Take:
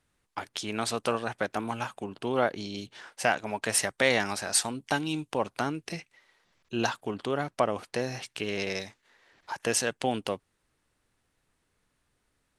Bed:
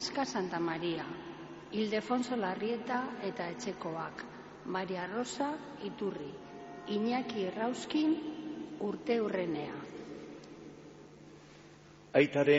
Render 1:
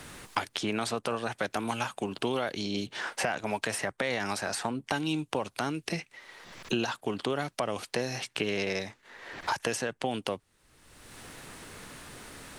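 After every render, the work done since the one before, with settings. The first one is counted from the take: peak limiter -17 dBFS, peak gain reduction 8.5 dB; three bands compressed up and down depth 100%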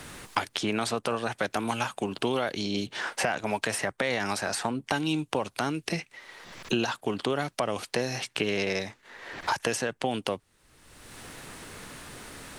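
trim +2.5 dB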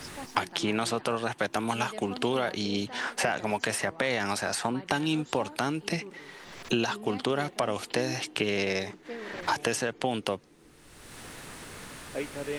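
add bed -9 dB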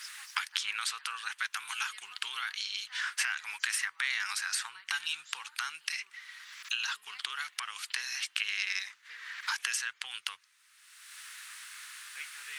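inverse Chebyshev high-pass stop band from 670 Hz, stop band 40 dB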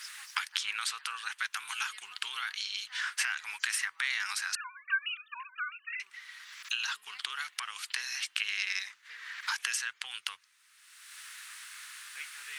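4.55–6.00 s: formants replaced by sine waves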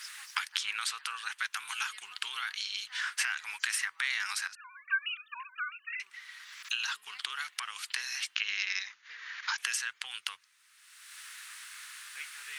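4.47–4.91 s: compression 12:1, threshold -45 dBFS; 8.35–9.58 s: brick-wall FIR low-pass 7.1 kHz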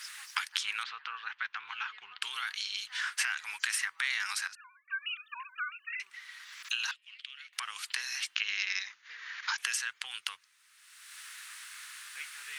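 0.83–2.22 s: Gaussian low-pass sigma 2.5 samples; 4.52–5.12 s: dip -17.5 dB, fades 0.29 s; 6.91–7.53 s: ladder band-pass 2.9 kHz, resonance 55%

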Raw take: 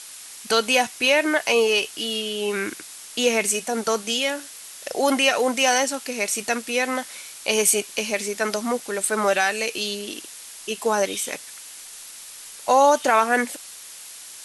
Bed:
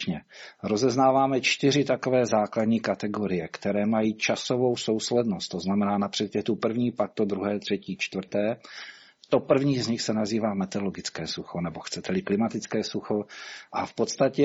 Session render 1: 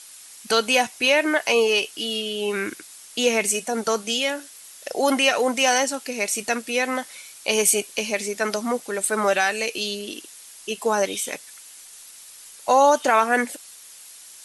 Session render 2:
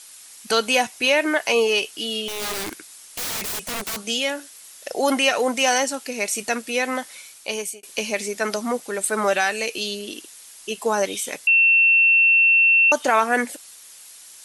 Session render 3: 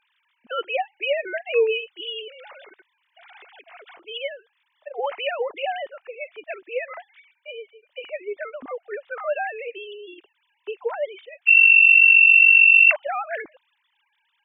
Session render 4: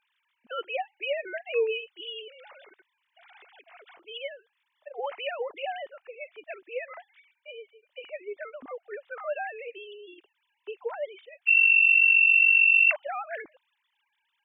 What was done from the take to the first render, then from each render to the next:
noise reduction 6 dB, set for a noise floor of -41 dBFS
2.28–4.01 s: integer overflow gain 23 dB; 7.24–7.83 s: fade out; 11.47–12.92 s: bleep 2.7 kHz -12 dBFS
formants replaced by sine waves
trim -6.5 dB

